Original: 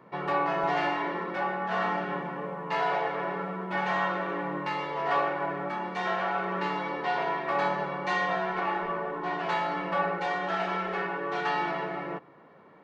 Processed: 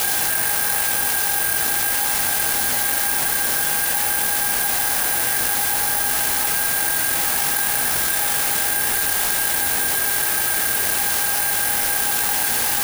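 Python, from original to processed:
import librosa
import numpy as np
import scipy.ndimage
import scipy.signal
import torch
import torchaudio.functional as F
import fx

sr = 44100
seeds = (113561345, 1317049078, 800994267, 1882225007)

y = fx.spec_gate(x, sr, threshold_db=-20, keep='weak')
y = fx.lowpass(y, sr, hz=3200.0, slope=6)
y = fx.high_shelf(y, sr, hz=2000.0, db=7.5)
y = fx.quant_dither(y, sr, seeds[0], bits=6, dither='triangular')
y = fx.small_body(y, sr, hz=(820.0, 1600.0), ring_ms=45, db=17)
y = fx.rotary_switch(y, sr, hz=8.0, then_hz=1.1, switch_at_s=0.3)
y = fx.echo_alternate(y, sr, ms=237, hz=1200.0, feedback_pct=87, wet_db=-5.5)
y = fx.rev_fdn(y, sr, rt60_s=2.1, lf_ratio=0.8, hf_ratio=0.5, size_ms=73.0, drr_db=-9.5)
y = (np.kron(y[::4], np.eye(4)[0]) * 4)[:len(y)]
y = fx.env_flatten(y, sr, amount_pct=100)
y = y * 10.0 ** (-5.0 / 20.0)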